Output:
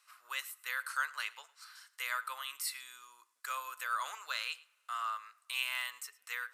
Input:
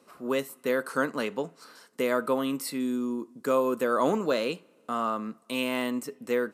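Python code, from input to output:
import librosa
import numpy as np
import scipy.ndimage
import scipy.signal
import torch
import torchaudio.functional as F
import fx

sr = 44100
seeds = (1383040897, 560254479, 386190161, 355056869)

p1 = scipy.signal.sosfilt(scipy.signal.butter(4, 1300.0, 'highpass', fs=sr, output='sos'), x)
p2 = p1 + fx.echo_single(p1, sr, ms=108, db=-21.5, dry=0)
y = p2 * librosa.db_to_amplitude(-1.5)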